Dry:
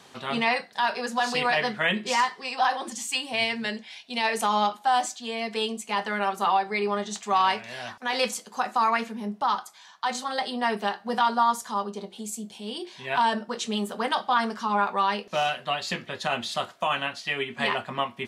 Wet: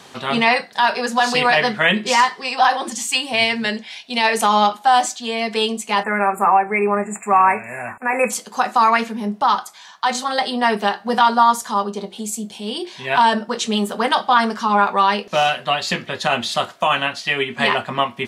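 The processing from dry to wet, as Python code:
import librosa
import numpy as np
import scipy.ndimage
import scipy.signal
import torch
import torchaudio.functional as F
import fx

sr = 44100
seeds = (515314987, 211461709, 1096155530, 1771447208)

y = fx.spec_erase(x, sr, start_s=6.03, length_s=2.28, low_hz=2700.0, high_hz=6900.0)
y = y * 10.0 ** (8.5 / 20.0)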